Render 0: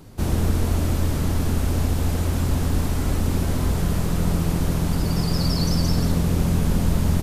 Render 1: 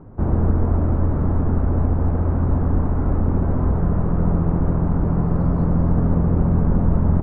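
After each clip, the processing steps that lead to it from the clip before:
low-pass filter 1,300 Hz 24 dB per octave
level +3 dB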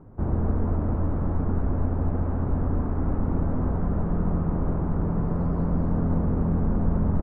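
single-tap delay 241 ms −5.5 dB
level −6 dB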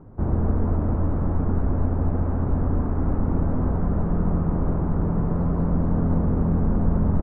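high-frequency loss of the air 120 metres
level +2.5 dB

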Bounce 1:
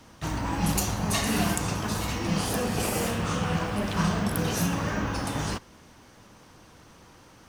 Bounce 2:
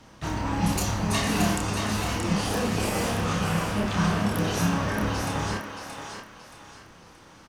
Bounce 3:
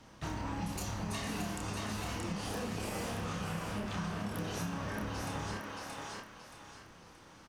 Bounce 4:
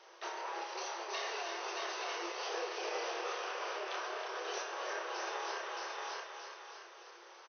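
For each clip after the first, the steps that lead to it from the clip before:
high-shelf EQ 9,600 Hz −9.5 dB; double-tracking delay 29 ms −4.5 dB; on a send: feedback echo with a high-pass in the loop 626 ms, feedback 35%, high-pass 550 Hz, level −5.5 dB
downward compressor, threshold −29 dBFS, peak gain reduction 10 dB; level −5.5 dB
brick-wall band-pass 340–6,300 Hz; single-tap delay 319 ms −7 dB; level +1.5 dB

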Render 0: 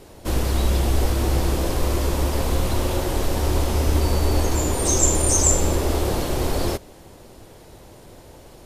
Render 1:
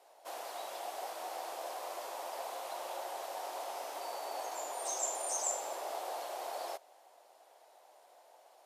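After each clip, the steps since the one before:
four-pole ladder high-pass 630 Hz, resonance 60%
level −6 dB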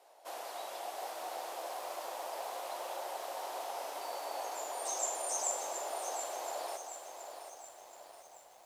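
feedback echo at a low word length 725 ms, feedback 55%, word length 10 bits, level −8 dB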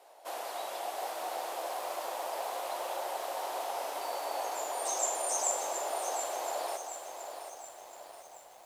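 parametric band 5,600 Hz −2 dB
level +4.5 dB

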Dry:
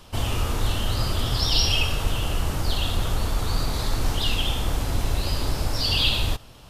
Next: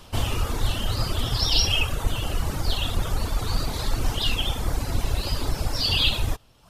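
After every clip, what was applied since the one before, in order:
reverb reduction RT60 1 s
level +1.5 dB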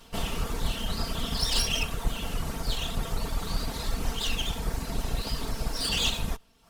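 lower of the sound and its delayed copy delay 4.4 ms
level −3.5 dB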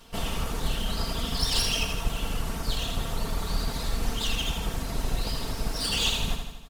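repeating echo 81 ms, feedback 59%, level −6.5 dB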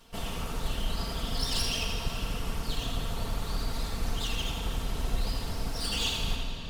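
convolution reverb RT60 5.2 s, pre-delay 67 ms, DRR 4 dB
level −5 dB

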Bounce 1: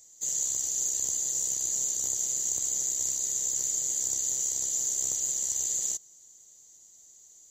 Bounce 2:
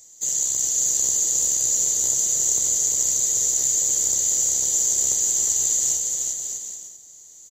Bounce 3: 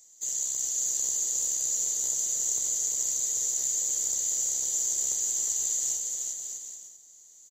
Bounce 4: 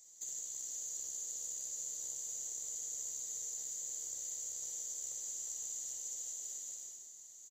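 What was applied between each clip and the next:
bouncing-ball delay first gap 360 ms, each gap 0.7×, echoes 5; level +6.5 dB
low-shelf EQ 380 Hz −6.5 dB; level −7.5 dB
downward compressor 6 to 1, threshold −38 dBFS, peak gain reduction 13.5 dB; on a send: reverse bouncing-ball delay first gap 60 ms, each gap 1.6×, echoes 5; on the sum: level −4.5 dB

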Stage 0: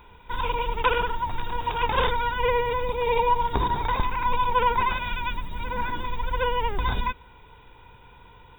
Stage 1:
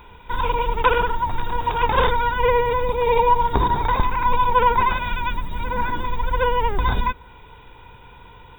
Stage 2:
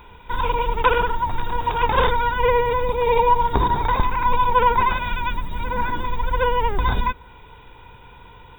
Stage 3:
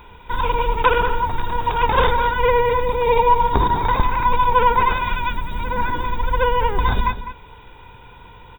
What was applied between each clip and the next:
dynamic equaliser 2,900 Hz, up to −5 dB, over −46 dBFS, Q 1.5; level +5.5 dB
no processing that can be heard
slap from a distant wall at 35 metres, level −11 dB; level +1.5 dB

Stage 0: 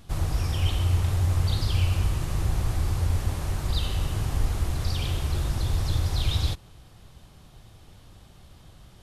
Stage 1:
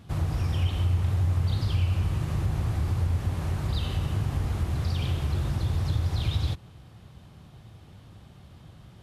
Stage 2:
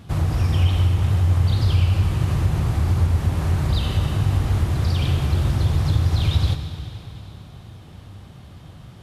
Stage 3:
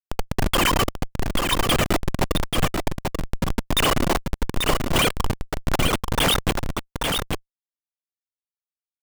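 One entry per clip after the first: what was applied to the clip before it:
high-pass filter 87 Hz 12 dB per octave; bass and treble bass +6 dB, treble −7 dB; downward compressor 2 to 1, threshold −24 dBFS, peak gain reduction 5 dB
convolution reverb RT60 3.3 s, pre-delay 60 ms, DRR 8 dB; level +6.5 dB
three sine waves on the formant tracks; comparator with hysteresis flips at −13 dBFS; single-tap delay 837 ms −4.5 dB; level +1.5 dB

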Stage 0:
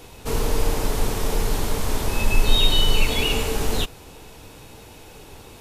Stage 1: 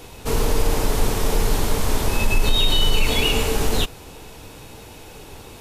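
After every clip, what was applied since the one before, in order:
brickwall limiter −11 dBFS, peak gain reduction 7 dB
level +3 dB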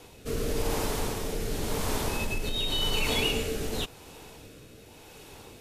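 rotating-speaker cabinet horn 0.9 Hz
low-shelf EQ 67 Hz −9 dB
level −5 dB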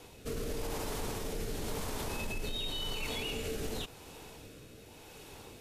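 brickwall limiter −25.5 dBFS, peak gain reduction 10 dB
level −2.5 dB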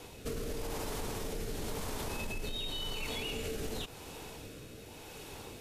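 downward compressor 4 to 1, threshold −38 dBFS, peak gain reduction 5.5 dB
level +3.5 dB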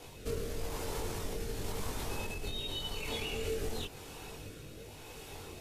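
multi-voice chorus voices 4, 0.39 Hz, delay 21 ms, depth 1.5 ms
level +2.5 dB

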